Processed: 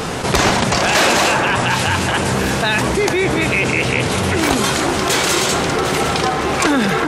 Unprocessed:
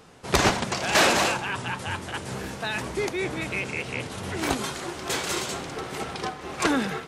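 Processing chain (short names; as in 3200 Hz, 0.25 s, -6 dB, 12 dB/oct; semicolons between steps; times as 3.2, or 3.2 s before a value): on a send: echo with dull and thin repeats by turns 0.376 s, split 2000 Hz, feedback 56%, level -12 dB; on the sum: fast leveller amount 70%; gain +4.5 dB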